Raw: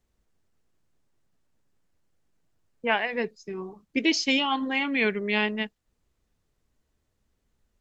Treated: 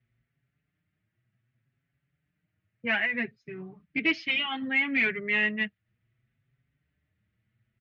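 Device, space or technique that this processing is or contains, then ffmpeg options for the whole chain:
barber-pole flanger into a guitar amplifier: -filter_complex "[0:a]equalizer=frequency=125:width_type=o:width=1:gain=11,equalizer=frequency=500:width_type=o:width=1:gain=-8,equalizer=frequency=1000:width_type=o:width=1:gain=-10,equalizer=frequency=2000:width_type=o:width=1:gain=11,equalizer=frequency=4000:width_type=o:width=1:gain=-3,asplit=2[link_01][link_02];[link_02]adelay=5.6,afreqshift=0.64[link_03];[link_01][link_03]amix=inputs=2:normalize=1,asoftclip=type=tanh:threshold=-17.5dB,highpass=83,equalizer=frequency=120:width_type=q:width=4:gain=6,equalizer=frequency=630:width_type=q:width=4:gain=6,equalizer=frequency=1300:width_type=q:width=4:gain=4,lowpass=frequency=3500:width=0.5412,lowpass=frequency=3500:width=1.3066"

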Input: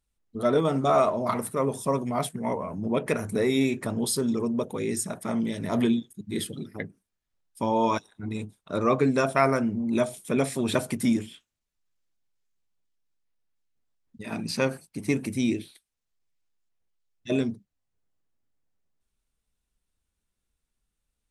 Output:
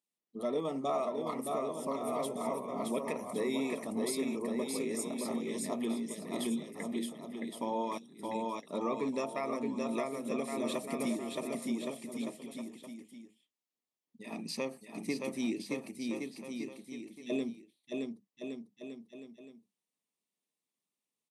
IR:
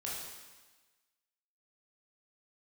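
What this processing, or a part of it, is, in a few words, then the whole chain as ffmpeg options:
PA system with an anti-feedback notch: -af "highpass=frequency=190:width=0.5412,highpass=frequency=190:width=1.3066,asuperstop=centerf=1500:order=4:qfactor=3.1,aecho=1:1:620|1116|1513|1830|2084:0.631|0.398|0.251|0.158|0.1,alimiter=limit=-16.5dB:level=0:latency=1:release=419,volume=-7.5dB"

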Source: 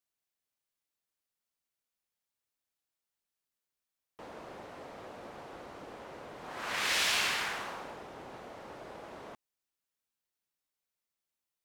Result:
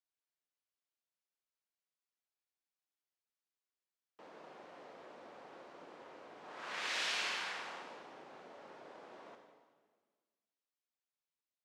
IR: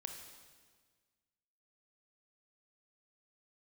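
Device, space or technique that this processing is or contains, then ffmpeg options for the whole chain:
supermarket ceiling speaker: -filter_complex "[0:a]highpass=230,lowpass=6500[link_01];[1:a]atrim=start_sample=2205[link_02];[link_01][link_02]afir=irnorm=-1:irlink=0,volume=-4dB"

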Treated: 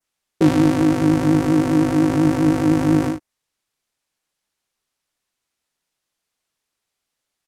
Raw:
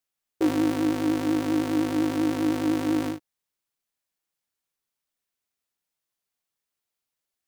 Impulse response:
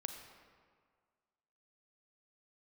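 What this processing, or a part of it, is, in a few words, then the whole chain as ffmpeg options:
octave pedal: -filter_complex "[0:a]lowpass=11000,asplit=2[link_01][link_02];[link_02]asetrate=22050,aresample=44100,atempo=2,volume=-7dB[link_03];[link_01][link_03]amix=inputs=2:normalize=0,adynamicequalizer=threshold=0.00224:dfrequency=3600:dqfactor=1.3:tfrequency=3600:tqfactor=1.3:attack=5:release=100:ratio=0.375:range=3.5:mode=cutabove:tftype=bell,volume=7.5dB"

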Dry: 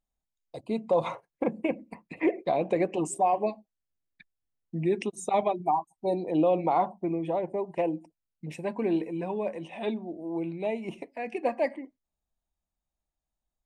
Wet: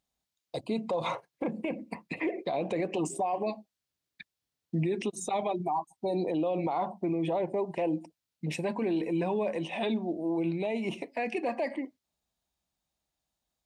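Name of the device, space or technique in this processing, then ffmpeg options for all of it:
broadcast voice chain: -af "highpass=79,deesser=0.9,acompressor=threshold=-26dB:ratio=6,equalizer=frequency=4200:width_type=o:width=1.3:gain=6,alimiter=level_in=3.5dB:limit=-24dB:level=0:latency=1:release=28,volume=-3.5dB,volume=5dB"

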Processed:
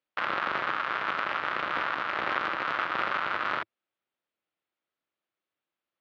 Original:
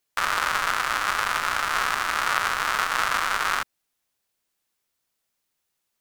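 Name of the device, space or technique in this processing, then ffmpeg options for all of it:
ring modulator pedal into a guitar cabinet: -af "aeval=exprs='val(0)*sgn(sin(2*PI*130*n/s))':channel_layout=same,highpass=100,equalizer=frequency=110:width_type=q:width=4:gain=-6,equalizer=frequency=330:width_type=q:width=4:gain=6,equalizer=frequency=570:width_type=q:width=4:gain=5,equalizer=frequency=1300:width_type=q:width=4:gain=4,lowpass=frequency=3500:width=0.5412,lowpass=frequency=3500:width=1.3066,volume=-7dB"

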